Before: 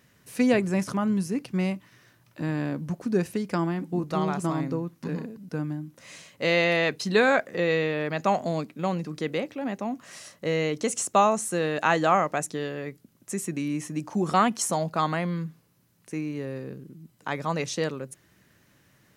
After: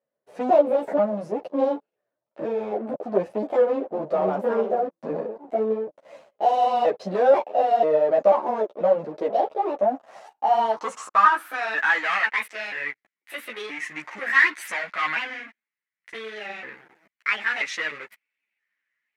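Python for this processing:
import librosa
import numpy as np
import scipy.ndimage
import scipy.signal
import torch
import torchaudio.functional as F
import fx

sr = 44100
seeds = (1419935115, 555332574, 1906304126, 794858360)

y = fx.pitch_trill(x, sr, semitones=6.5, every_ms=489)
y = fx.low_shelf(y, sr, hz=170.0, db=-4.0)
y = fx.leveller(y, sr, passes=5)
y = fx.filter_sweep_bandpass(y, sr, from_hz=590.0, to_hz=2000.0, start_s=9.75, end_s=12.09, q=5.3)
y = fx.ensemble(y, sr)
y = F.gain(torch.from_numpy(y), 5.5).numpy()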